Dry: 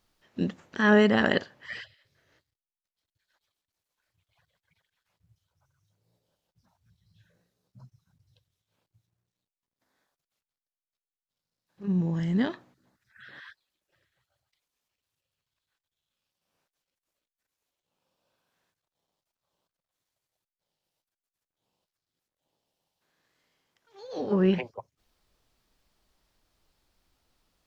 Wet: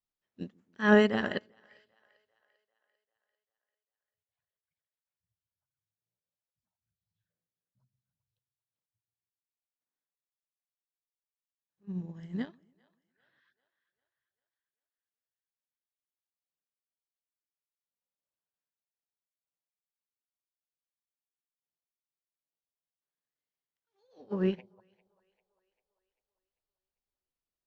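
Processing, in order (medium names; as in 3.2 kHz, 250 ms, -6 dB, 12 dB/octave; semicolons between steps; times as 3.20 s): two-band feedback delay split 490 Hz, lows 140 ms, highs 395 ms, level -13 dB; upward expansion 2.5:1, over -34 dBFS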